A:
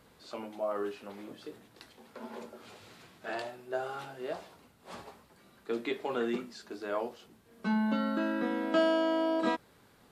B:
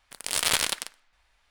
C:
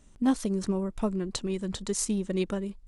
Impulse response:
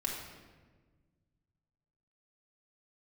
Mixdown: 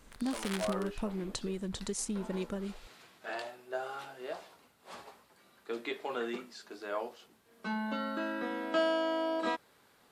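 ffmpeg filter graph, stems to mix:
-filter_complex "[0:a]lowshelf=frequency=290:gain=-11.5,volume=-0.5dB[link_01];[1:a]equalizer=frequency=1400:width=0.62:gain=10,volume=-14.5dB[link_02];[2:a]acompressor=threshold=-32dB:ratio=3,volume=-2dB,asplit=2[link_03][link_04];[link_04]apad=whole_len=66352[link_05];[link_02][link_05]sidechaincompress=threshold=-39dB:ratio=3:attack=5.6:release=1060[link_06];[link_01][link_06][link_03]amix=inputs=3:normalize=0"

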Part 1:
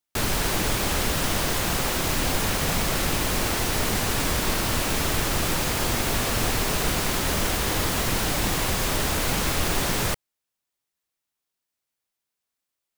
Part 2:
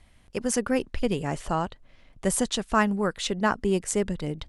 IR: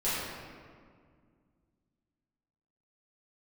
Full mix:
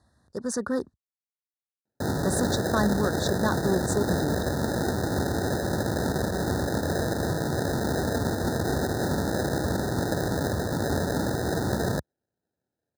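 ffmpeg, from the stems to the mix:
-filter_complex "[0:a]acrusher=samples=39:mix=1:aa=0.000001,adelay=1850,volume=-4dB[link_01];[1:a]highshelf=frequency=10000:gain=-10.5,acontrast=60,asoftclip=type=hard:threshold=-15dB,volume=-9dB,asplit=3[link_02][link_03][link_04];[link_02]atrim=end=0.94,asetpts=PTS-STARTPTS,afade=type=out:start_time=0.936:duration=0.004:curve=hsin[link_05];[link_03]atrim=start=0.94:end=2.03,asetpts=PTS-STARTPTS,volume=0[link_06];[link_04]atrim=start=2.03,asetpts=PTS-STARTPTS,afade=type=in:duration=0.004:curve=hsin[link_07];[link_05][link_06][link_07]concat=n=3:v=0:a=1[link_08];[link_01][link_08]amix=inputs=2:normalize=0,highpass=frequency=68:width=0.5412,highpass=frequency=68:width=1.3066,dynaudnorm=framelen=100:gausssize=11:maxgain=3dB,asuperstop=centerf=2600:order=20:qfactor=1.5"

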